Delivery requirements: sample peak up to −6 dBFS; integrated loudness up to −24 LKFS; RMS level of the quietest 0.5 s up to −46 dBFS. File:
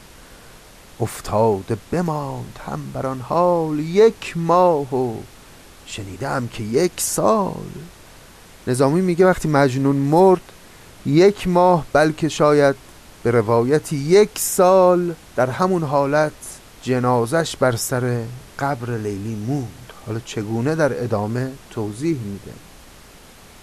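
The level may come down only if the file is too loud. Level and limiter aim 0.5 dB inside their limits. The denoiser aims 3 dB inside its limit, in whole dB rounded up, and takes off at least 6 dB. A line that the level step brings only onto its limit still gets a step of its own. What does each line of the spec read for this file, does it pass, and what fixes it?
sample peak −4.0 dBFS: out of spec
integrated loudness −19.0 LKFS: out of spec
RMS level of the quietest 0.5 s −44 dBFS: out of spec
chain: level −5.5 dB

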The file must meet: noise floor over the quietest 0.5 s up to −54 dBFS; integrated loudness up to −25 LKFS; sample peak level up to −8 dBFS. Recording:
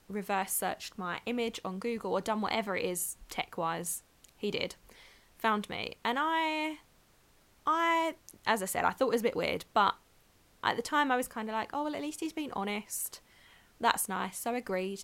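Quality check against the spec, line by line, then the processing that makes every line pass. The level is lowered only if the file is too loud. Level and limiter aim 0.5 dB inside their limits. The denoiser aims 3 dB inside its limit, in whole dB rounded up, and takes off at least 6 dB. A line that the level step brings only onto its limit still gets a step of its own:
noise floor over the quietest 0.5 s −65 dBFS: in spec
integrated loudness −32.5 LKFS: in spec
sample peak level −9.0 dBFS: in spec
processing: no processing needed

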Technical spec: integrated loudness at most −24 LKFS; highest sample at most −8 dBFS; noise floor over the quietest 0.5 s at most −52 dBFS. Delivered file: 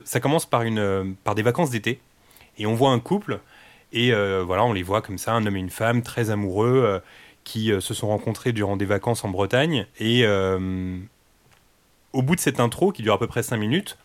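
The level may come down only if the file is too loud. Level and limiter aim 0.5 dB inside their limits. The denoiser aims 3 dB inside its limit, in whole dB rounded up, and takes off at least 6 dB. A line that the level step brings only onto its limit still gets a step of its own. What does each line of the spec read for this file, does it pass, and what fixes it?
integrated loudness −23.0 LKFS: out of spec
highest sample −6.0 dBFS: out of spec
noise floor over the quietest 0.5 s −60 dBFS: in spec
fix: level −1.5 dB
brickwall limiter −8.5 dBFS

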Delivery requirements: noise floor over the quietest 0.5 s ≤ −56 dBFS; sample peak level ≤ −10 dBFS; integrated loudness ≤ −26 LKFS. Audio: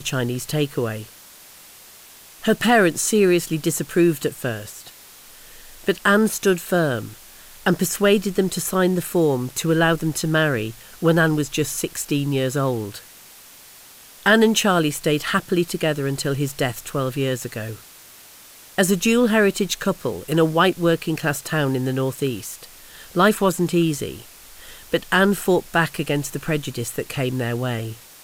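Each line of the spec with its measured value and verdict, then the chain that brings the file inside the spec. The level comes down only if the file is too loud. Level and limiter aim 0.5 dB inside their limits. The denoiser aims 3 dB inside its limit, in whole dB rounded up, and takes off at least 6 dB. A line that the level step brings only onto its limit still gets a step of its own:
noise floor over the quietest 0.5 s −45 dBFS: out of spec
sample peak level −4.5 dBFS: out of spec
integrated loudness −21.0 LKFS: out of spec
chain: broadband denoise 9 dB, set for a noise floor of −45 dBFS
level −5.5 dB
brickwall limiter −10.5 dBFS

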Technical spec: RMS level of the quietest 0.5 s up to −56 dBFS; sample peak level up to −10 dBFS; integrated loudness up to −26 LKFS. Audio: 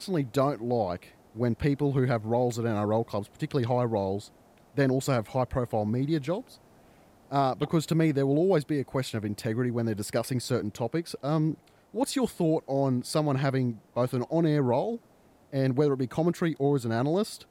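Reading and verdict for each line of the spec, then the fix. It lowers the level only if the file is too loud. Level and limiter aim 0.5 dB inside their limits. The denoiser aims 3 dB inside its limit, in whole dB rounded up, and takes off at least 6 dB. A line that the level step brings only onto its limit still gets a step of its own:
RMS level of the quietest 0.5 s −59 dBFS: in spec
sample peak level −13.0 dBFS: in spec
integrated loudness −28.0 LKFS: in spec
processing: no processing needed

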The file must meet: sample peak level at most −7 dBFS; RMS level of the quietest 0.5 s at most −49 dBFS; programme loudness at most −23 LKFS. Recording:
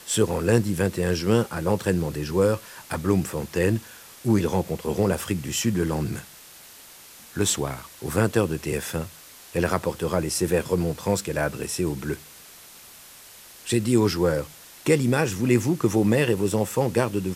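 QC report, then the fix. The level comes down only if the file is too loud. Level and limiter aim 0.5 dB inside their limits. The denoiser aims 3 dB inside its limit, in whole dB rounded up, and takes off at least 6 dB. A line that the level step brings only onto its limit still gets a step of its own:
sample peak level −6.5 dBFS: out of spec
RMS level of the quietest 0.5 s −47 dBFS: out of spec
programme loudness −24.5 LKFS: in spec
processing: broadband denoise 6 dB, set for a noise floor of −47 dBFS
brickwall limiter −7.5 dBFS

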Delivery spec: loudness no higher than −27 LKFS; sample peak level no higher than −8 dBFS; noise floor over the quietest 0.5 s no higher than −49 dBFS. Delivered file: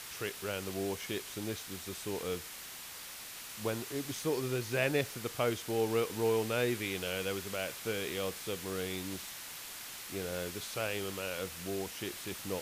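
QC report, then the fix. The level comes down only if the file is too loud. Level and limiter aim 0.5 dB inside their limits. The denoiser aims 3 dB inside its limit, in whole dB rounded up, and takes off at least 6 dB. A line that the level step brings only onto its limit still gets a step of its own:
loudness −36.0 LKFS: in spec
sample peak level −18.0 dBFS: in spec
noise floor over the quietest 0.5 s −47 dBFS: out of spec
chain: broadband denoise 6 dB, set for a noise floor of −47 dBFS

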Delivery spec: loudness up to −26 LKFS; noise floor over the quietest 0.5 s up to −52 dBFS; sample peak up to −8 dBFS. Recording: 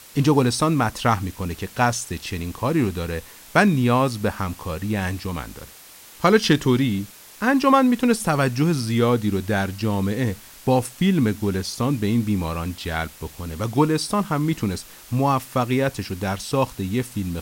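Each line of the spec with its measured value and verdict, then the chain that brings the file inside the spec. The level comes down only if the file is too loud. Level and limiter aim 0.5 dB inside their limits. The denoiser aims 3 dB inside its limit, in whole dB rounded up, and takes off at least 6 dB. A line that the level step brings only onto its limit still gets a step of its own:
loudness −22.0 LKFS: out of spec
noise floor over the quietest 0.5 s −45 dBFS: out of spec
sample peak −2.0 dBFS: out of spec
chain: broadband denoise 6 dB, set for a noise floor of −45 dBFS
level −4.5 dB
brickwall limiter −8.5 dBFS

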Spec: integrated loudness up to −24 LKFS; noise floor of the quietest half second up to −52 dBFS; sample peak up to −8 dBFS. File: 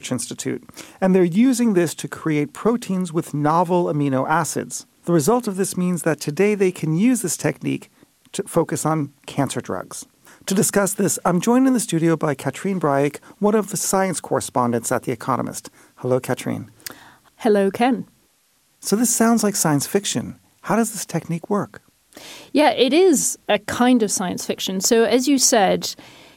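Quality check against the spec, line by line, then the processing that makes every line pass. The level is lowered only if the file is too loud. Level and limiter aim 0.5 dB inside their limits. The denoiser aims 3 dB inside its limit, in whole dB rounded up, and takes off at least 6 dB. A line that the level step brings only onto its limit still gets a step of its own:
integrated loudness −20.0 LKFS: out of spec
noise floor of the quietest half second −61 dBFS: in spec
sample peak −4.5 dBFS: out of spec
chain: level −4.5 dB

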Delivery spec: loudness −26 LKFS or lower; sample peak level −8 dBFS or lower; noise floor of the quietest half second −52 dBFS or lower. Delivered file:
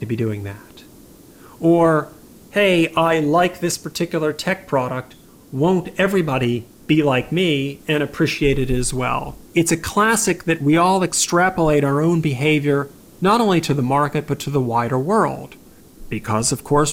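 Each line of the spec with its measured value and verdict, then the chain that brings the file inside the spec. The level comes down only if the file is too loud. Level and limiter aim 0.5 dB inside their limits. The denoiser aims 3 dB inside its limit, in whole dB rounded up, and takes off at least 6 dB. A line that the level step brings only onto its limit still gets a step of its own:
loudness −18.5 LKFS: out of spec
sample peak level −5.0 dBFS: out of spec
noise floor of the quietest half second −45 dBFS: out of spec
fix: level −8 dB

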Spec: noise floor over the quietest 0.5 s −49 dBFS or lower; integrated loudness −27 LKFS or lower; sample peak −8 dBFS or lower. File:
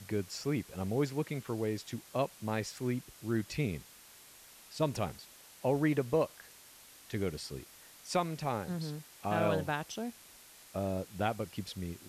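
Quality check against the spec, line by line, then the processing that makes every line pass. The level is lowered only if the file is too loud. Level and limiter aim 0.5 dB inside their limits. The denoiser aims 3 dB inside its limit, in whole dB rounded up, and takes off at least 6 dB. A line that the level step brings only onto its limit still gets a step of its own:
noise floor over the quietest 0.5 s −56 dBFS: in spec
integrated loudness −35.5 LKFS: in spec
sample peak −18.0 dBFS: in spec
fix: no processing needed

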